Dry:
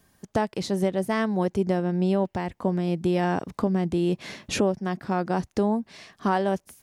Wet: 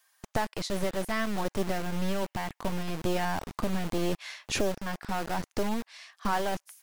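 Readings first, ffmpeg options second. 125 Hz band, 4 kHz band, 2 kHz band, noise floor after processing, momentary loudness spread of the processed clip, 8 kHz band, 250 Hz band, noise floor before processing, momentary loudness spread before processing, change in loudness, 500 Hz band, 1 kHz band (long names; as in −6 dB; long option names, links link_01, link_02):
−7.5 dB, +0.5 dB, −1.0 dB, −81 dBFS, 5 LU, +1.0 dB, −8.0 dB, −70 dBFS, 5 LU, −6.0 dB, −7.0 dB, −4.0 dB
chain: -filter_complex "[0:a]lowshelf=frequency=73:gain=9.5,acrossover=split=840[link_01][link_02];[link_01]acrusher=bits=3:dc=4:mix=0:aa=0.000001[link_03];[link_03][link_02]amix=inputs=2:normalize=0,volume=-1.5dB"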